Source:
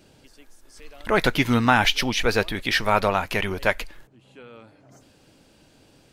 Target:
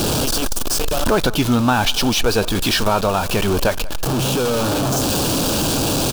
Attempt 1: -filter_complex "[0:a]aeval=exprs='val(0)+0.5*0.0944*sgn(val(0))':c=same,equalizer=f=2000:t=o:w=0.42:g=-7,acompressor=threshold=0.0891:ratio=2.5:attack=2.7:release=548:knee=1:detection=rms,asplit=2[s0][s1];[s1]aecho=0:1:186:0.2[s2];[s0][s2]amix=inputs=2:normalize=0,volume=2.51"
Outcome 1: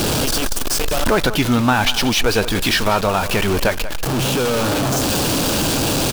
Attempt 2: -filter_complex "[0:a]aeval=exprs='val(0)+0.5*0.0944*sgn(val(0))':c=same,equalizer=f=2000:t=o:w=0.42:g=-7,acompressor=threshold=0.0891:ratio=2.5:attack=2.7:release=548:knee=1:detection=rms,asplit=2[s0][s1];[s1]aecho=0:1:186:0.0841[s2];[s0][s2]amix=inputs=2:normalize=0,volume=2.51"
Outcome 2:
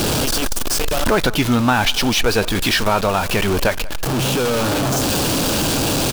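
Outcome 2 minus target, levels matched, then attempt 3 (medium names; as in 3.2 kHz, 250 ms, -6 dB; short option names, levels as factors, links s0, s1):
2 kHz band +3.0 dB
-filter_complex "[0:a]aeval=exprs='val(0)+0.5*0.0944*sgn(val(0))':c=same,equalizer=f=2000:t=o:w=0.42:g=-16.5,acompressor=threshold=0.0891:ratio=2.5:attack=2.7:release=548:knee=1:detection=rms,asplit=2[s0][s1];[s1]aecho=0:1:186:0.0841[s2];[s0][s2]amix=inputs=2:normalize=0,volume=2.51"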